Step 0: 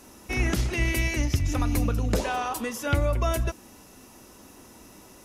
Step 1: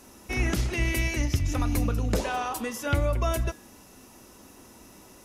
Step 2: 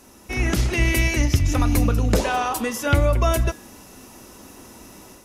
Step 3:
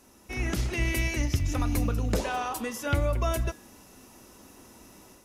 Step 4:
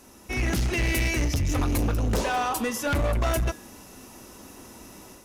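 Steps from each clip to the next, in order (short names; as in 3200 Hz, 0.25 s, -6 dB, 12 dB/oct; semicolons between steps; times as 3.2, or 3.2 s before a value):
de-hum 152.2 Hz, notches 33; gain -1 dB
AGC gain up to 5.5 dB; gain +1.5 dB
short-mantissa float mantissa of 6-bit; gain -8 dB
hard clip -27 dBFS, distortion -9 dB; gain +6 dB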